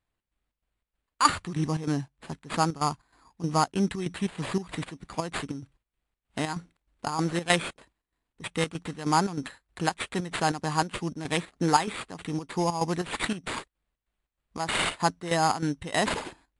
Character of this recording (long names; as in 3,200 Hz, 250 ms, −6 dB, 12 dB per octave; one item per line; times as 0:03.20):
chopped level 3.2 Hz, depth 65%, duty 65%
aliases and images of a low sample rate 5,800 Hz, jitter 0%
MP3